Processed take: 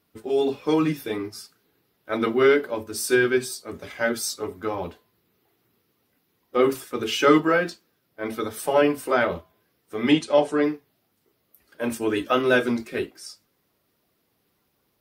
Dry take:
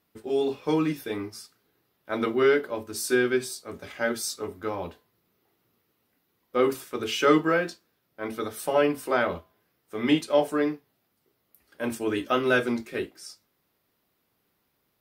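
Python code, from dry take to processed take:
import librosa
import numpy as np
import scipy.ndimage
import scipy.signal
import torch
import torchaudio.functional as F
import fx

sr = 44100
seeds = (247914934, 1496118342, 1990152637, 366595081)

y = fx.spec_quant(x, sr, step_db=15)
y = fx.lowpass(y, sr, hz=9100.0, slope=24, at=(10.12, 10.64))
y = y * 10.0 ** (3.5 / 20.0)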